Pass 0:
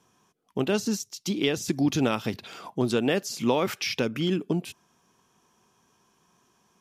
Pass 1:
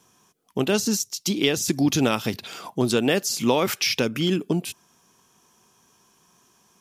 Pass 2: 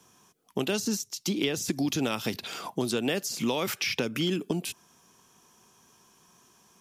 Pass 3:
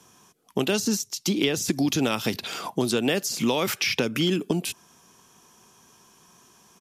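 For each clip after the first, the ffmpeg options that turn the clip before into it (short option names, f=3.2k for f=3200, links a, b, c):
-af "highshelf=f=4.8k:g=9,volume=3dB"
-filter_complex "[0:a]acrossover=split=160|2500[a][b][c];[a]acompressor=threshold=-43dB:ratio=4[d];[b]acompressor=threshold=-27dB:ratio=4[e];[c]acompressor=threshold=-33dB:ratio=4[f];[d][e][f]amix=inputs=3:normalize=0"
-af "aresample=32000,aresample=44100,volume=4.5dB"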